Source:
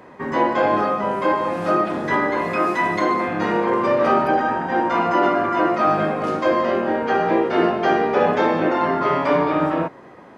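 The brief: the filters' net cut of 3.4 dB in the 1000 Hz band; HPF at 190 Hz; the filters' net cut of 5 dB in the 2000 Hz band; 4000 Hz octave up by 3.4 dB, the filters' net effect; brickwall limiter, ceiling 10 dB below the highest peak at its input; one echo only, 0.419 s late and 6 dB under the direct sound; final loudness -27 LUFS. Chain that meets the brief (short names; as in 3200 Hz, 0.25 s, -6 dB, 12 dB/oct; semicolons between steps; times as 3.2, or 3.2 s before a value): HPF 190 Hz; bell 1000 Hz -3 dB; bell 2000 Hz -7 dB; bell 4000 Hz +8 dB; limiter -17 dBFS; echo 0.419 s -6 dB; gain -2.5 dB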